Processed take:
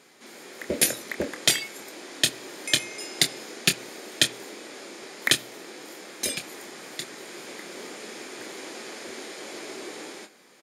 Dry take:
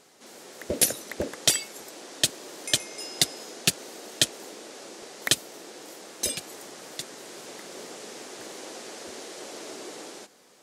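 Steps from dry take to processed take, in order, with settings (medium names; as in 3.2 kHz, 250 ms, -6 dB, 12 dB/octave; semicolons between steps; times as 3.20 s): doubling 26 ms -9 dB; reverberation RT60 0.50 s, pre-delay 3 ms, DRR 17 dB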